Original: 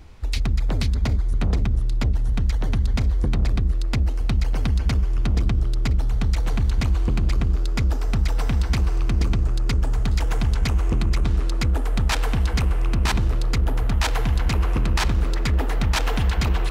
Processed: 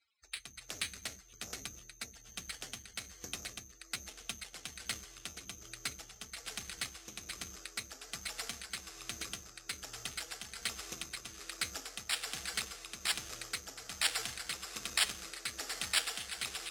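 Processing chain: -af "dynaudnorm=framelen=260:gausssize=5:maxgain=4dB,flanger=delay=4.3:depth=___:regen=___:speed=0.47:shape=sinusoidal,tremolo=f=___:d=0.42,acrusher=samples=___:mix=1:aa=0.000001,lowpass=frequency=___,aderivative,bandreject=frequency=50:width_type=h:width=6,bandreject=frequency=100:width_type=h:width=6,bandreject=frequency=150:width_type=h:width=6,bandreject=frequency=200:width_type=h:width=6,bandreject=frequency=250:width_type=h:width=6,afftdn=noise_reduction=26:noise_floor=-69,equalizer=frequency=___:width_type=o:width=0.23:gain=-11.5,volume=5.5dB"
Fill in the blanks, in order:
6.6, 67, 1.2, 7, 7500, 960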